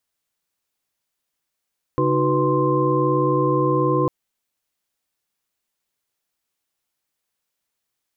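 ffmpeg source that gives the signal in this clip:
ffmpeg -f lavfi -i "aevalsrc='0.075*(sin(2*PI*138.59*t)+sin(2*PI*311.13*t)+sin(2*PI*369.99*t)+sin(2*PI*493.88*t)+sin(2*PI*1046.5*t))':duration=2.1:sample_rate=44100" out.wav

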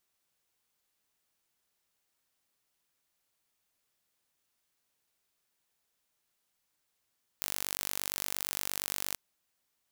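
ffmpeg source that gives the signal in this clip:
ffmpeg -f lavfi -i "aevalsrc='0.447*eq(mod(n,907),0)':duration=1.74:sample_rate=44100" out.wav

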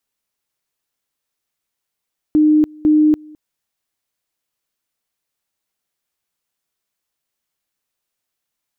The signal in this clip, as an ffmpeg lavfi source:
ffmpeg -f lavfi -i "aevalsrc='pow(10,(-8.5-27*gte(mod(t,0.5),0.29))/20)*sin(2*PI*305*t)':duration=1:sample_rate=44100" out.wav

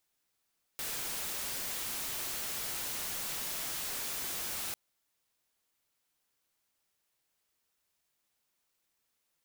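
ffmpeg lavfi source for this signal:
ffmpeg -f lavfi -i "anoisesrc=color=white:amplitude=0.0231:duration=3.95:sample_rate=44100:seed=1" out.wav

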